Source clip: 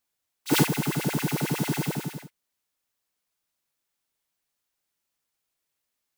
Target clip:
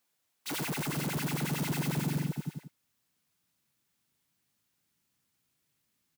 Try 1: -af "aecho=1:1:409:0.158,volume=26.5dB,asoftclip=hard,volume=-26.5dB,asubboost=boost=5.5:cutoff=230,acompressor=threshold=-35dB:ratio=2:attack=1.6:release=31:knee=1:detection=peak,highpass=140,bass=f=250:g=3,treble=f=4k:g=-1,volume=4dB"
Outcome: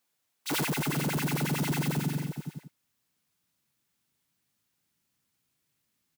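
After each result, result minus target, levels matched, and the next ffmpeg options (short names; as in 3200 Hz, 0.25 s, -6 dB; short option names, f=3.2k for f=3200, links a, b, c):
compressor: peak gain reduction +9 dB; overloaded stage: distortion -5 dB
-af "aecho=1:1:409:0.158,volume=26.5dB,asoftclip=hard,volume=-26.5dB,asubboost=boost=5.5:cutoff=230,highpass=140,bass=f=250:g=3,treble=f=4k:g=-1,volume=4dB"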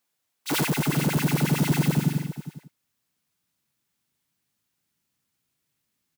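overloaded stage: distortion -5 dB
-af "aecho=1:1:409:0.158,volume=38dB,asoftclip=hard,volume=-38dB,asubboost=boost=5.5:cutoff=230,highpass=140,bass=f=250:g=3,treble=f=4k:g=-1,volume=4dB"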